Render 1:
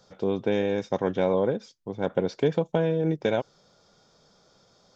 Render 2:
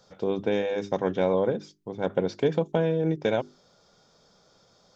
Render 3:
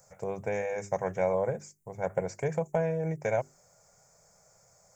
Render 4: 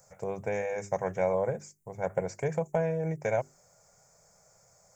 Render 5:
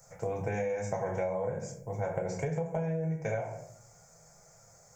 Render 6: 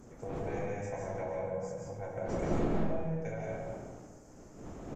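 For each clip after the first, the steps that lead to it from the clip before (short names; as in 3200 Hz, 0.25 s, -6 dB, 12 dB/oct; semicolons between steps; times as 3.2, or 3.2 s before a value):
notches 50/100/150/200/250/300/350/400 Hz
EQ curve 140 Hz 0 dB, 280 Hz -19 dB, 640 Hz +1 dB, 1300 Hz -6 dB, 2200 Hz +1 dB, 3500 Hz -25 dB, 7400 Hz +14 dB
nothing audible
reverb RT60 0.60 s, pre-delay 6 ms, DRR -1.5 dB; compressor 10:1, threshold -29 dBFS, peak gain reduction 12 dB
wind noise 390 Hz -35 dBFS; digital reverb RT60 1.2 s, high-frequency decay 0.65×, pre-delay 0.11 s, DRR -1.5 dB; downsampling 32000 Hz; gain -8.5 dB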